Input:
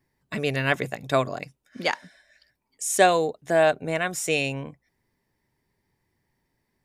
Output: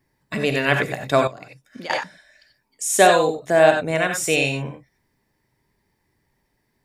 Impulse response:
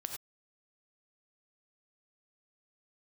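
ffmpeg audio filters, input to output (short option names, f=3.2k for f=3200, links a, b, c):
-filter_complex "[1:a]atrim=start_sample=2205,atrim=end_sample=4410[a];[0:a][a]afir=irnorm=-1:irlink=0,asettb=1/sr,asplit=3[b][c][d];[b]atrim=end=1.274[e];[c]atrim=start=1.27:end=1.9,asetpts=PTS-STARTPTS,afade=t=in:d=0.004:c=qsin,afade=t=out:st=0.626:d=0.004:c=qsin,acompressor=threshold=-40dB:ratio=6[f];[d]atrim=start=1.896[g];[e][f]acrossfade=d=0.004:c1=hsin:c2=qsin[h];[h][g]acrossfade=d=0.004:c1=qsin:c2=hsin,volume=6dB"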